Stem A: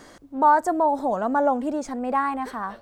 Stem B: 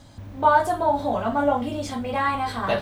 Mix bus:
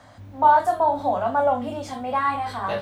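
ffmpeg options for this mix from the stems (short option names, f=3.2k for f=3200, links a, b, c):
-filter_complex "[0:a]lowpass=3.1k,lowshelf=f=500:t=q:w=3:g=-10,volume=-4dB[a];[1:a]highpass=71,flanger=delay=19:depth=4.5:speed=0.73,volume=-1.5dB[b];[a][b]amix=inputs=2:normalize=0"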